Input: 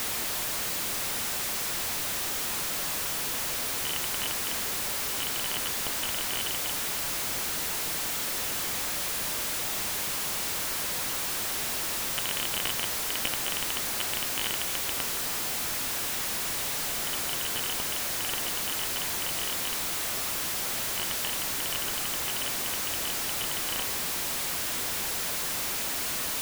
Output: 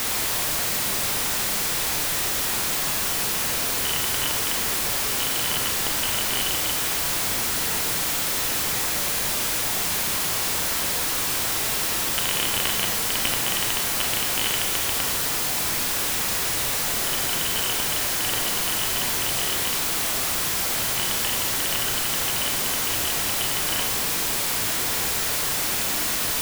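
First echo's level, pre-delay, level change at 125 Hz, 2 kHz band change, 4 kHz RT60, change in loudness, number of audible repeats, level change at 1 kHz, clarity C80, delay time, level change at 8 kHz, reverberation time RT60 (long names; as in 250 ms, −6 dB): no echo audible, 28 ms, +8.5 dB, +6.5 dB, 0.65 s, +6.5 dB, no echo audible, +6.5 dB, 9.5 dB, no echo audible, +6.5 dB, 0.75 s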